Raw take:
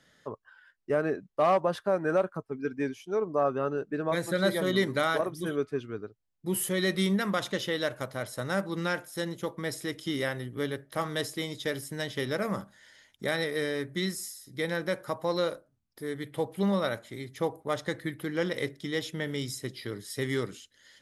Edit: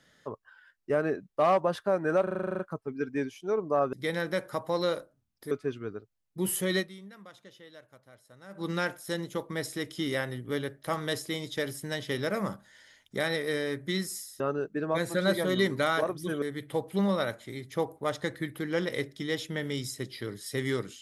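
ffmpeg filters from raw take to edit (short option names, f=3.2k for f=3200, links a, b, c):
-filter_complex "[0:a]asplit=16[a][b][c][d][e][f][g][h][i][j][k][l][m][n][o][p];[a]atrim=end=2.272[q];[b]atrim=start=2.228:end=2.272[r];[c]atrim=start=2.228:end=2.272[s];[d]atrim=start=2.228:end=2.272[t];[e]atrim=start=2.228:end=2.272[u];[f]atrim=start=2.228:end=2.272[v];[g]atrim=start=2.228:end=2.272[w];[h]atrim=start=2.228:end=2.272[x];[i]atrim=start=2.228:end=2.272[y];[j]atrim=start=2.228:end=3.572[z];[k]atrim=start=14.478:end=16.062[aa];[l]atrim=start=5.588:end=7.27,asetpts=PTS-STARTPTS,afade=t=out:st=1.282:d=0.4:c=exp:silence=0.0891251[ab];[m]atrim=start=7.27:end=8.29,asetpts=PTS-STARTPTS,volume=-21dB[ac];[n]atrim=start=8.29:end=14.482,asetpts=PTS-STARTPTS,afade=t=in:d=0.4:c=exp:silence=0.0891251[ad];[o]atrim=start=3.568:end=5.592[ae];[p]atrim=start=16.058[af];[q][r]acrossfade=d=0.004:c1=hsin:c2=hsin[ag];[ag][s]acrossfade=d=0.004:c1=hsin:c2=hsin[ah];[ah][t]acrossfade=d=0.004:c1=hsin:c2=hsin[ai];[ai][u]acrossfade=d=0.004:c1=hsin:c2=hsin[aj];[aj][v]acrossfade=d=0.004:c1=hsin:c2=hsin[ak];[ak][w]acrossfade=d=0.004:c1=hsin:c2=hsin[al];[al][x]acrossfade=d=0.004:c1=hsin:c2=hsin[am];[am][y]acrossfade=d=0.004:c1=hsin:c2=hsin[an];[an][z]acrossfade=d=0.004:c1=hsin:c2=hsin[ao];[ao][aa]acrossfade=d=0.004:c1=hsin:c2=hsin[ap];[ab][ac][ad]concat=n=3:v=0:a=1[aq];[ap][aq]acrossfade=d=0.004:c1=hsin:c2=hsin[ar];[ar][ae]acrossfade=d=0.004:c1=hsin:c2=hsin[as];[as][af]acrossfade=d=0.004:c1=hsin:c2=hsin"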